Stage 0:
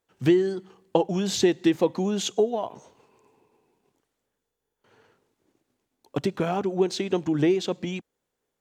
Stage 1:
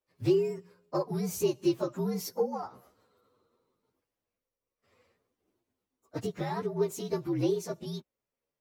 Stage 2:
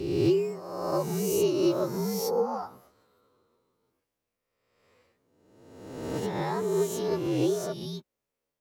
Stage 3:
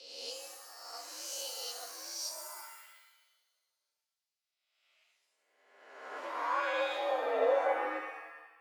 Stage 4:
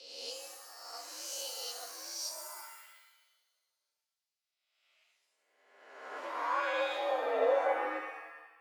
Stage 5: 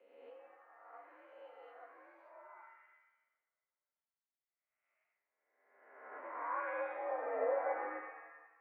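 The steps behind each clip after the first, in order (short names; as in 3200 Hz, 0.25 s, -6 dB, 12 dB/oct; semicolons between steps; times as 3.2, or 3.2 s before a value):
inharmonic rescaling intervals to 119%; gain -4.5 dB
spectral swells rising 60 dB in 1.28 s
band-pass sweep 4400 Hz -> 360 Hz, 4.34–8.01; frequency shift +140 Hz; shimmer reverb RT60 1 s, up +7 st, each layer -2 dB, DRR 4.5 dB; gain +2 dB
nothing audible
elliptic low-pass 2100 Hz, stop band 60 dB; gain -6 dB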